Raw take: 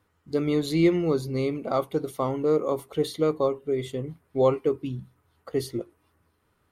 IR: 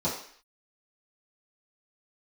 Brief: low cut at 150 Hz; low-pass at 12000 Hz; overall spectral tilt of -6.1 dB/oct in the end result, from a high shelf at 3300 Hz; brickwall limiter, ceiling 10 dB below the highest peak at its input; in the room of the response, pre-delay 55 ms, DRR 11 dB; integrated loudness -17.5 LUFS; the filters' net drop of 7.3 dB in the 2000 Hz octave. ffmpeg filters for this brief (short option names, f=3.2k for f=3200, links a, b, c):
-filter_complex "[0:a]highpass=150,lowpass=12k,equalizer=f=2k:t=o:g=-7.5,highshelf=f=3.3k:g=-3,alimiter=limit=-21dB:level=0:latency=1,asplit=2[a][b];[1:a]atrim=start_sample=2205,adelay=55[c];[b][c]afir=irnorm=-1:irlink=0,volume=-20.5dB[d];[a][d]amix=inputs=2:normalize=0,volume=13.5dB"